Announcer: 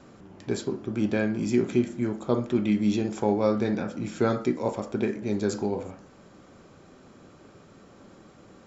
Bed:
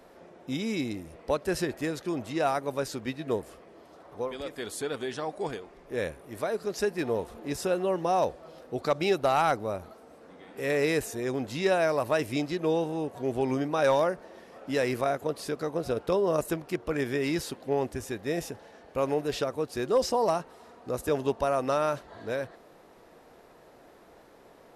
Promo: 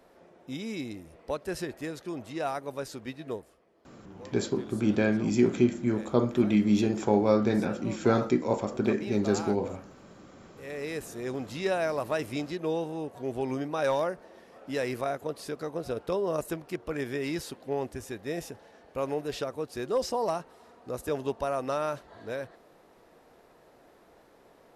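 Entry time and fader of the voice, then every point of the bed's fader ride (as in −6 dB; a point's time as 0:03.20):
3.85 s, +0.5 dB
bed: 0:03.29 −5 dB
0:03.55 −14.5 dB
0:10.51 −14.5 dB
0:11.27 −3.5 dB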